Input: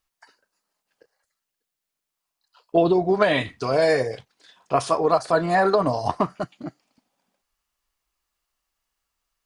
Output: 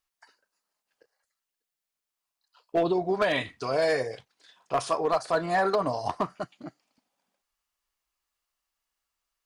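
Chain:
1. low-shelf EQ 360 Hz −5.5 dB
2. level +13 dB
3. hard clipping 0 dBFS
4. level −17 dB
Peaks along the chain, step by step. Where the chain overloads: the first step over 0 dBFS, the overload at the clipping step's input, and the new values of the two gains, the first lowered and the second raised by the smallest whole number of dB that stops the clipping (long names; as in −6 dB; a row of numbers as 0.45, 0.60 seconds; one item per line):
−5.0, +8.0, 0.0, −17.0 dBFS
step 2, 8.0 dB
step 2 +5 dB, step 4 −9 dB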